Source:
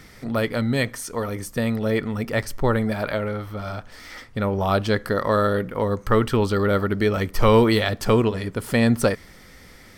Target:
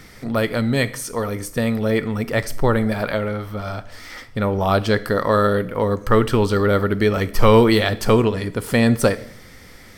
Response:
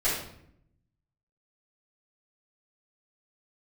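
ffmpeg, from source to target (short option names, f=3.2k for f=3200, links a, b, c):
-filter_complex "[0:a]asplit=2[a][b];[1:a]atrim=start_sample=2205,highshelf=f=4.8k:g=10.5[c];[b][c]afir=irnorm=-1:irlink=0,volume=-26dB[d];[a][d]amix=inputs=2:normalize=0,volume=2.5dB"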